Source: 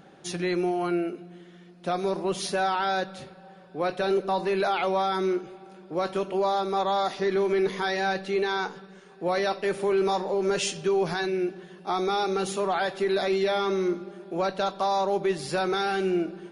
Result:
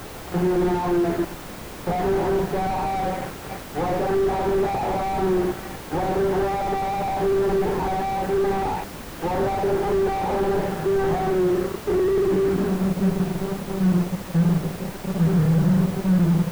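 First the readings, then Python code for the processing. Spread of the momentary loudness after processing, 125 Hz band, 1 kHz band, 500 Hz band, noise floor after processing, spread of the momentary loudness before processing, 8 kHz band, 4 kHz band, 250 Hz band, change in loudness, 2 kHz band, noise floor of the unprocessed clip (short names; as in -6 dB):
9 LU, +15.5 dB, +2.5 dB, +3.0 dB, -36 dBFS, 9 LU, -0.5 dB, -5.0 dB, +8.0 dB, +4.0 dB, -2.0 dB, -50 dBFS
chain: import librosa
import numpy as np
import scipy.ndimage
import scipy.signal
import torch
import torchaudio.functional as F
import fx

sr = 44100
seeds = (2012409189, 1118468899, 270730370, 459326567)

y = fx.filter_sweep_lowpass(x, sr, from_hz=840.0, to_hz=160.0, start_s=10.96, end_s=13.23, q=7.5)
y = fx.room_shoebox(y, sr, seeds[0], volume_m3=710.0, walls='furnished', distance_m=4.1)
y = fx.fuzz(y, sr, gain_db=23.0, gate_db=-29.0)
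y = fx.peak_eq(y, sr, hz=1600.0, db=6.0, octaves=0.84)
y = fx.hum_notches(y, sr, base_hz=50, count=4)
y = fx.dmg_noise_colour(y, sr, seeds[1], colour='violet', level_db=-28.0)
y = fx.high_shelf(y, sr, hz=2500.0, db=10.5)
y = fx.slew_limit(y, sr, full_power_hz=61.0)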